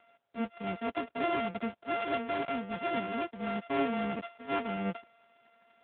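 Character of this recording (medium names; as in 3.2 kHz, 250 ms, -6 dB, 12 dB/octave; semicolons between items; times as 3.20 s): a buzz of ramps at a fixed pitch in blocks of 64 samples; AMR-NB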